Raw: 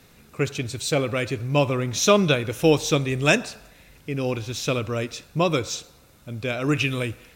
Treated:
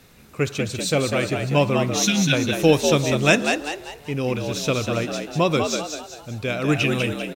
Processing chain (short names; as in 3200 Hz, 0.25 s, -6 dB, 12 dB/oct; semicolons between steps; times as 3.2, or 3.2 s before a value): spectral repair 2.08–2.3, 270–1400 Hz before; frequency-shifting echo 0.196 s, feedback 41%, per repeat +73 Hz, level -5.5 dB; gain +1.5 dB